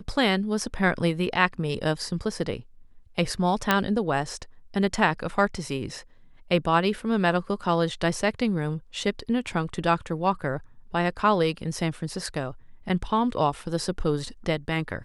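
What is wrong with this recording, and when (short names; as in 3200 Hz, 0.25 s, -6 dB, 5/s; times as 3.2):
3.71 pop -5 dBFS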